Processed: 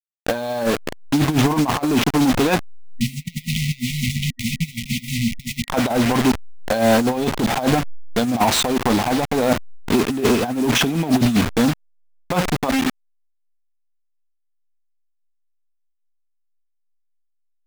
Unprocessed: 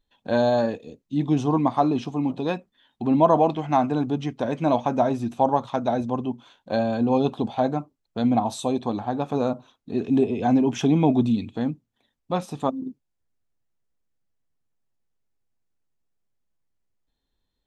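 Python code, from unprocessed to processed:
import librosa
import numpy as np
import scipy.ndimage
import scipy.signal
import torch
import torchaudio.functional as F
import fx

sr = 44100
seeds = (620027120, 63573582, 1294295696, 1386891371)

y = fx.delta_hold(x, sr, step_db=-32.0)
y = fx.tilt_shelf(y, sr, db=-6.0, hz=970.0)
y = fx.over_compress(y, sr, threshold_db=-29.0, ratio=-0.5)
y = fx.high_shelf(y, sr, hz=3700.0, db=-9.0)
y = fx.leveller(y, sr, passes=3)
y = fx.spec_erase(y, sr, start_s=2.8, length_s=2.88, low_hz=250.0, high_hz=1900.0)
y = fx.am_noise(y, sr, seeds[0], hz=5.7, depth_pct=60)
y = F.gain(torch.from_numpy(y), 6.5).numpy()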